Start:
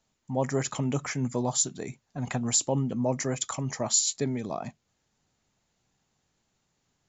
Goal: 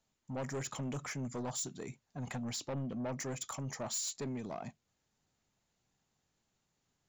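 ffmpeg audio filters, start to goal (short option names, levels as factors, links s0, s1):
-filter_complex "[0:a]asettb=1/sr,asplit=3[s0][s1][s2];[s0]atrim=end=2.454[s3];[s1]atrim=start=2.45:end=3.19,asetpts=PTS-STARTPTS,afade=t=in:d=0.004:c=qsin,afade=t=out:st=0.736:d=0.004:c=qsin,lowpass=f=5500:w=0.5412,lowpass=f=5500:w=1.3066[s4];[s2]atrim=start=3.186[s5];[s3][s4]acrossfade=d=0.004:c1=hsin:c2=qsin[s6];[s6][s5]acrossfade=d=0.004:c1=qsin:c2=hsin,asoftclip=type=tanh:threshold=0.0398,volume=0.501"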